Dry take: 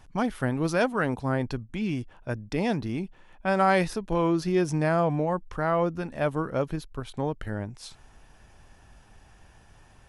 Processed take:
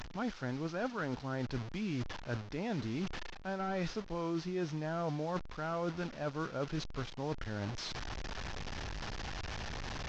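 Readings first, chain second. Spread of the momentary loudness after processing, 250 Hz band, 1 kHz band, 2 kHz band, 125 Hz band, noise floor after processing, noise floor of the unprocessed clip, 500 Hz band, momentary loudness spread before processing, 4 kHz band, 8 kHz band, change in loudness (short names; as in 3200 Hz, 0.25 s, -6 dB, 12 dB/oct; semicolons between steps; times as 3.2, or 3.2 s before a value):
6 LU, -10.0 dB, -12.0 dB, -10.0 dB, -8.5 dB, -48 dBFS, -55 dBFS, -12.0 dB, 11 LU, -2.0 dB, -6.0 dB, -11.5 dB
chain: delta modulation 32 kbps, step -34.5 dBFS; dynamic EQ 1400 Hz, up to +6 dB, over -48 dBFS, Q 6.7; reverse; compressor 6:1, threshold -34 dBFS, peak gain reduction 16 dB; reverse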